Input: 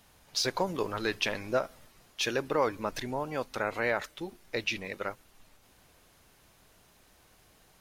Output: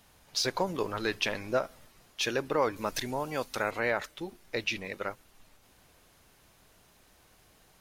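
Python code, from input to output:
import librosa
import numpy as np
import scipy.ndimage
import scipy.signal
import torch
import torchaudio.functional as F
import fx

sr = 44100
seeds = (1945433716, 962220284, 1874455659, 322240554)

y = fx.high_shelf(x, sr, hz=3400.0, db=8.5, at=(2.76, 3.71))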